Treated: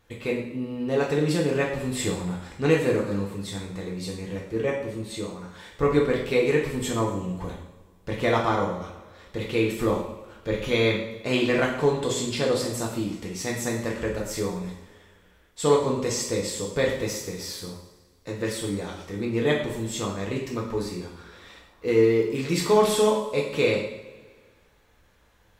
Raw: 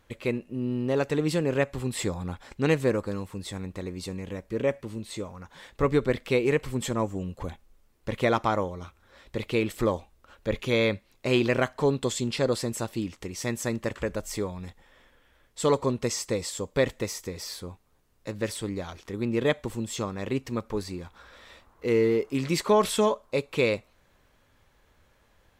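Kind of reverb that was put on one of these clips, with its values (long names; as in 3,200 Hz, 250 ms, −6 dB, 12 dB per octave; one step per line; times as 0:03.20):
coupled-rooms reverb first 0.63 s, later 1.8 s, from −16 dB, DRR −2.5 dB
level −2 dB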